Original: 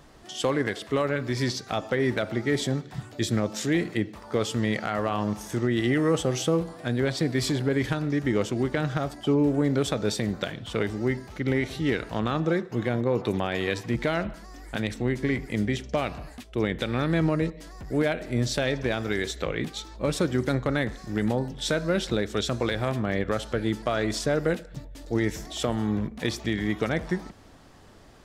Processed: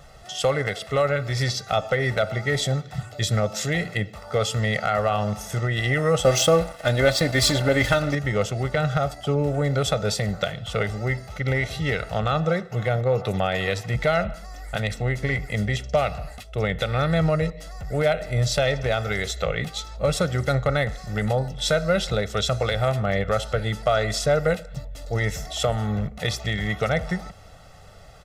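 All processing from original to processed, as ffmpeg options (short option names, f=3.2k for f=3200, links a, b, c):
-filter_complex "[0:a]asettb=1/sr,asplit=3[a][b][c];[a]atrim=end=6.234[d];[b]atrim=start=6.23:end=8.15,asetpts=PTS-STARTPTS,afade=t=in:d=0.004:c=qsin,afade=t=out:st=1.916:d=0.004:c=qsin,aecho=1:1:3.4:0.56,atrim=end_sample=84672,acontrast=42,aeval=exprs='sgn(val(0))*max(abs(val(0))-0.0133,0)':c=same[e];[c]atrim=start=8.146[f];[d][e]acrossfade=d=0.004:c1=hsin:c2=qsin[g];[g][f]acrossfade=d=0.004:c1=qsin:c2=hsin,equalizer=f=240:t=o:w=0.23:g=-13.5,aecho=1:1:1.5:0.8,volume=2.5dB"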